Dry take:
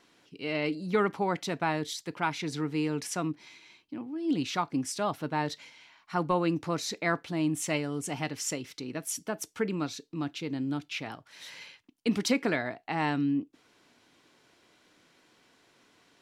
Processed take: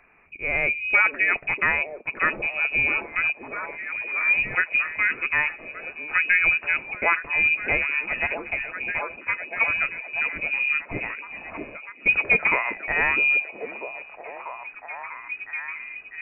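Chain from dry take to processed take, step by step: frequency inversion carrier 2.7 kHz; repeats whose band climbs or falls 646 ms, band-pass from 320 Hz, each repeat 0.7 oct, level -1 dB; trim +7 dB

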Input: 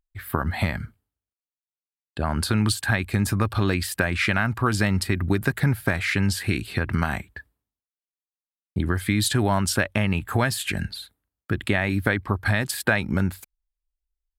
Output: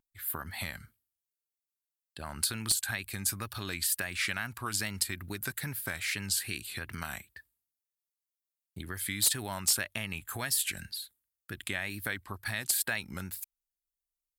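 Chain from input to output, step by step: pre-emphasis filter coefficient 0.9; wow and flutter 70 cents; wavefolder -18 dBFS; trim +1.5 dB

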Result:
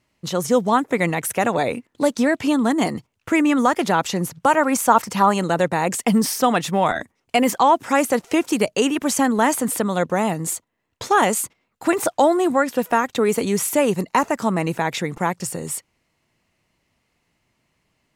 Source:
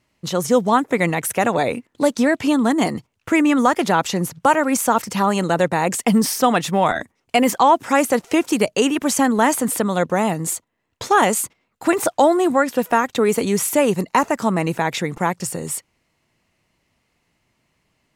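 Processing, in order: 4.55–5.34 s: dynamic bell 1 kHz, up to +6 dB, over -28 dBFS, Q 1.1; trim -1.5 dB

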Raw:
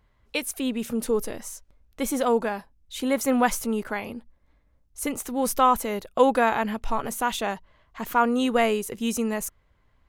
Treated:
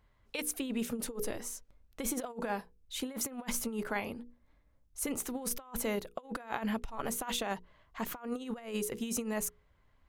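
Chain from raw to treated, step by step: hum notches 60/120/180/240/300/360/420/480 Hz; compressor with a negative ratio -28 dBFS, ratio -0.5; trim -7.5 dB

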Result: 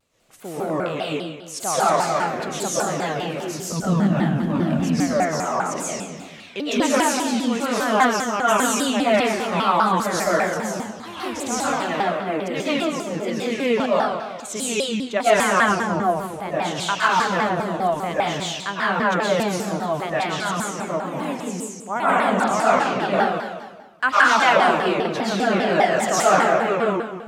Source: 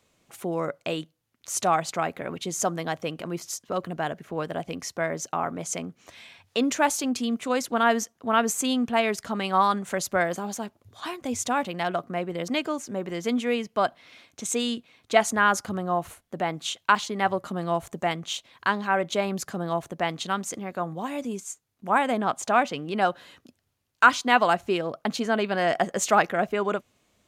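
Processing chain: 3.72–4.88 s: resonant low shelf 330 Hz +10.5 dB, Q 3; 15.47–16.00 s: low-pass 3.4 kHz 6 dB/octave; reverberation RT60 1.3 s, pre-delay 85 ms, DRR -9.5 dB; vibrato with a chosen wave saw down 5 Hz, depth 250 cents; trim -4.5 dB

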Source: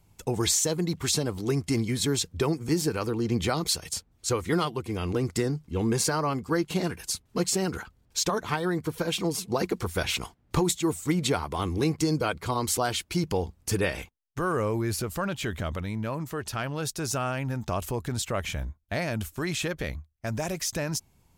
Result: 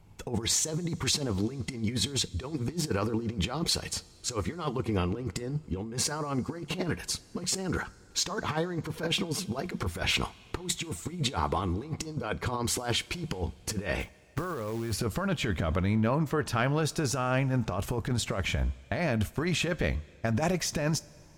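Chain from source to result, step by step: low-pass 2.8 kHz 6 dB/octave; compressor with a negative ratio -31 dBFS, ratio -0.5; 14.00–14.94 s: short-mantissa float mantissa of 2-bit; two-slope reverb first 0.24 s, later 2.9 s, from -17 dB, DRR 15 dB; trim +2 dB

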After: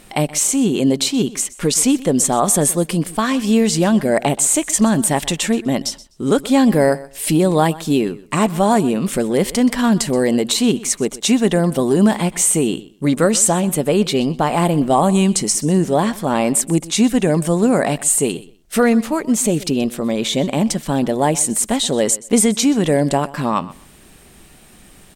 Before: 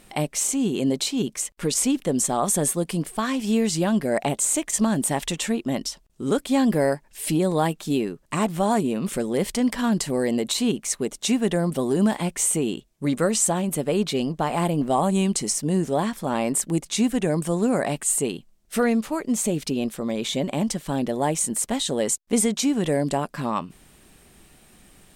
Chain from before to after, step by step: feedback delay 126 ms, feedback 18%, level -19 dB; trim +7 dB

